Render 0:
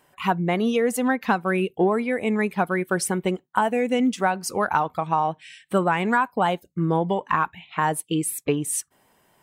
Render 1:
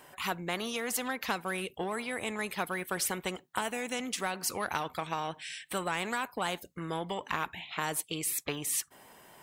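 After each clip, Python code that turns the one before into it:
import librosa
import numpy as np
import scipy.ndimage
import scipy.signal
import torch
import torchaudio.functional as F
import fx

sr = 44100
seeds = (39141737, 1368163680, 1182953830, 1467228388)

y = fx.low_shelf(x, sr, hz=220.0, db=-6.0)
y = fx.spectral_comp(y, sr, ratio=2.0)
y = F.gain(torch.from_numpy(y), -9.0).numpy()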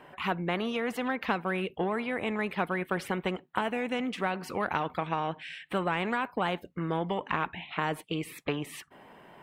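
y = fx.curve_eq(x, sr, hz=(120.0, 170.0, 2800.0, 6500.0), db=(0, 4, -2, -20))
y = F.gain(torch.from_numpy(y), 3.0).numpy()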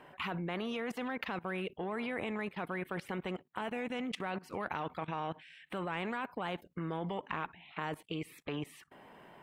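y = fx.level_steps(x, sr, step_db=19)
y = F.gain(torch.from_numpy(y), 1.0).numpy()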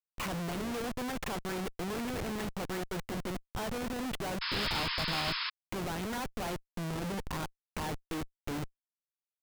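y = fx.schmitt(x, sr, flips_db=-42.0)
y = fx.spec_paint(y, sr, seeds[0], shape='noise', start_s=4.41, length_s=1.09, low_hz=910.0, high_hz=5300.0, level_db=-39.0)
y = F.gain(torch.from_numpy(y), 4.0).numpy()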